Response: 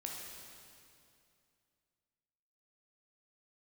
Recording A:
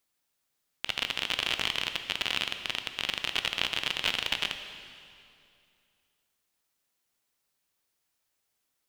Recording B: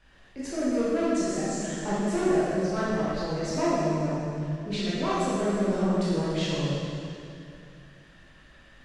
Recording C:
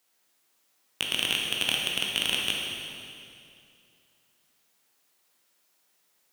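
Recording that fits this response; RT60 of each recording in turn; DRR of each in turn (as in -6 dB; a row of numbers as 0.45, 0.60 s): C; 2.5, 2.5, 2.5 s; 7.5, -10.0, -1.5 dB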